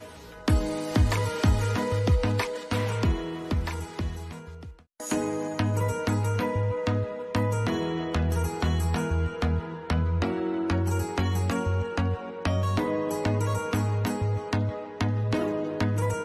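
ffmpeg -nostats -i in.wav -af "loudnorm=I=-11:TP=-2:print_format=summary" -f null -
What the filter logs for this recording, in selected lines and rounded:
Input Integrated:    -27.8 LUFS
Input True Peak:     -11.4 dBTP
Input LRA:             2.3 LU
Input Threshold:     -37.9 LUFS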